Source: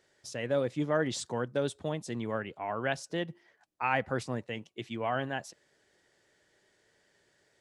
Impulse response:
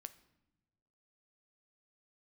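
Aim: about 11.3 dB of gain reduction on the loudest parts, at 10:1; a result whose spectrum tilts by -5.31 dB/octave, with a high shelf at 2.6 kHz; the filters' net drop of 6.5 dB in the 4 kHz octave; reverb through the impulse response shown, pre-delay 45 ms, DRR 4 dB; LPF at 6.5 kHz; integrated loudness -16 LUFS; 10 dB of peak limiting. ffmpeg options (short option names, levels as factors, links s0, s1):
-filter_complex "[0:a]lowpass=6500,highshelf=f=2600:g=-4.5,equalizer=f=4000:t=o:g=-4.5,acompressor=threshold=0.0158:ratio=10,alimiter=level_in=3.35:limit=0.0631:level=0:latency=1,volume=0.299,asplit=2[s0][s1];[1:a]atrim=start_sample=2205,adelay=45[s2];[s1][s2]afir=irnorm=-1:irlink=0,volume=1.19[s3];[s0][s3]amix=inputs=2:normalize=0,volume=28.2"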